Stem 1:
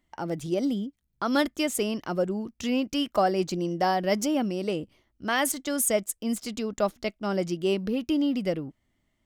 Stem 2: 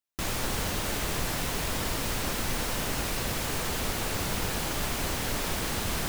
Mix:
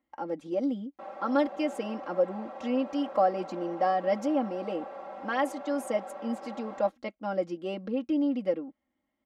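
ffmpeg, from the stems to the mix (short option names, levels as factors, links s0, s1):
-filter_complex "[0:a]volume=0.668[s0];[1:a]bandpass=f=690:t=q:w=1.6:csg=0,aecho=1:1:5.2:0.7,adelay=800,volume=0.531[s1];[s0][s1]amix=inputs=2:normalize=0,bandpass=f=650:t=q:w=0.66:csg=0,aecho=1:1:3.7:0.93"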